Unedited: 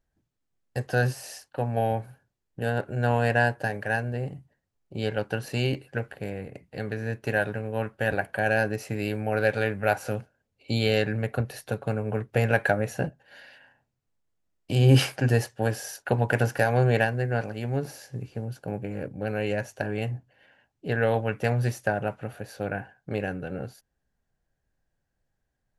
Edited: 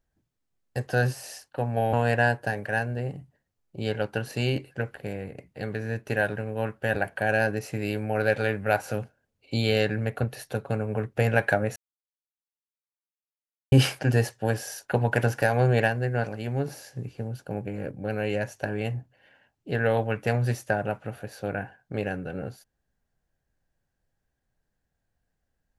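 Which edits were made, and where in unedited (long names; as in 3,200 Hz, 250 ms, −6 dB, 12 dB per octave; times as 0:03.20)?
0:01.93–0:03.10: remove
0:12.93–0:14.89: silence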